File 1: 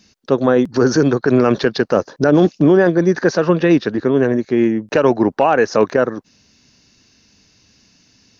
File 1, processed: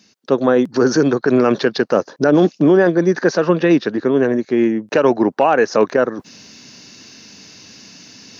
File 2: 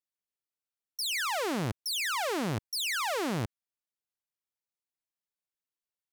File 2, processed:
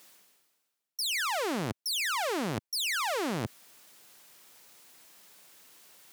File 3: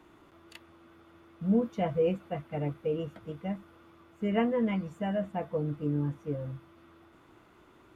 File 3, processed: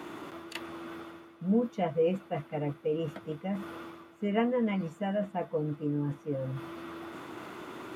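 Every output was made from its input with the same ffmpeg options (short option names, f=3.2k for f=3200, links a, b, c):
-af "highpass=160,areverse,acompressor=mode=upward:threshold=-28dB:ratio=2.5,areverse"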